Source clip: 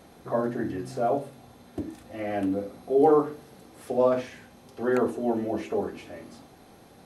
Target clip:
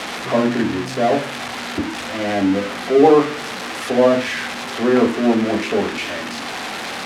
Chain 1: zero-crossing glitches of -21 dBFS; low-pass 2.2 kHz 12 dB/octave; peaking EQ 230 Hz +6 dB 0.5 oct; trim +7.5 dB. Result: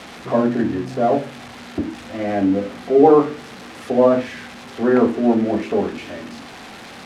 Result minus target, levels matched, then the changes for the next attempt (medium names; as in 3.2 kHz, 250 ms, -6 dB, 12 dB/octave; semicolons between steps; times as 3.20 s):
zero-crossing glitches: distortion -11 dB
change: zero-crossing glitches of -9.5 dBFS